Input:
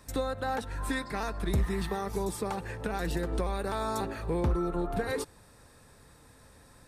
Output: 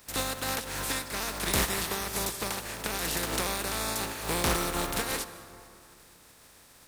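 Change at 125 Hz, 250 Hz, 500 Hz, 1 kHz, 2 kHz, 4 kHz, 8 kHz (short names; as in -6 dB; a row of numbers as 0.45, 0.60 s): -4.0, -3.0, -2.5, +1.0, +5.5, +11.5, +14.0 dB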